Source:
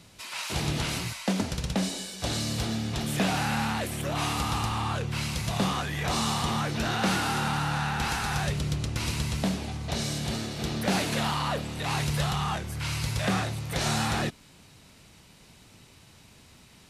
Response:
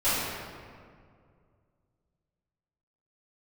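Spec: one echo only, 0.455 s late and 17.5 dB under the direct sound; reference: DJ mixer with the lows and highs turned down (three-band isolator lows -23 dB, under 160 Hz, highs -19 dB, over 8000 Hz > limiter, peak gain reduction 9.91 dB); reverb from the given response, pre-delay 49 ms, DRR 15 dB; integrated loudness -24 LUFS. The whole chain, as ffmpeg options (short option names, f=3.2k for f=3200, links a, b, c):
-filter_complex "[0:a]aecho=1:1:455:0.133,asplit=2[a][b];[1:a]atrim=start_sample=2205,adelay=49[c];[b][c]afir=irnorm=-1:irlink=0,volume=-29.5dB[d];[a][d]amix=inputs=2:normalize=0,acrossover=split=160 8000:gain=0.0708 1 0.112[e][f][g];[e][f][g]amix=inputs=3:normalize=0,volume=10dB,alimiter=limit=-15dB:level=0:latency=1"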